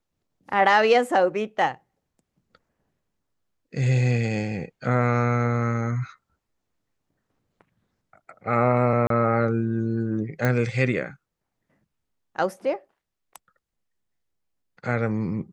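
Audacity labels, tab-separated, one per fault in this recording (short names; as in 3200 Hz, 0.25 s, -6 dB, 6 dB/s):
9.070000	9.100000	gap 33 ms
10.450000	10.450000	pop -11 dBFS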